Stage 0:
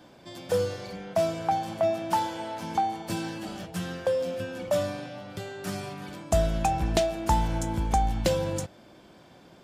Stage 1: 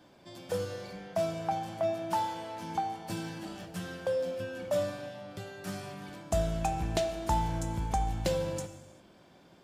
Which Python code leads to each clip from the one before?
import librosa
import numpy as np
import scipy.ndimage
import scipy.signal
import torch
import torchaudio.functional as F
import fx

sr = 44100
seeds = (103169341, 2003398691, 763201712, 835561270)

y = fx.rev_gated(x, sr, seeds[0], gate_ms=420, shape='falling', drr_db=8.5)
y = F.gain(torch.from_numpy(y), -6.0).numpy()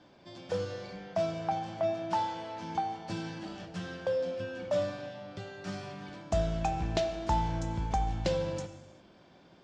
y = scipy.signal.sosfilt(scipy.signal.butter(4, 6200.0, 'lowpass', fs=sr, output='sos'), x)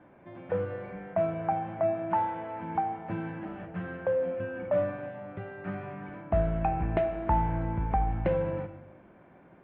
y = scipy.signal.sosfilt(scipy.signal.butter(6, 2300.0, 'lowpass', fs=sr, output='sos'), x)
y = F.gain(torch.from_numpy(y), 3.0).numpy()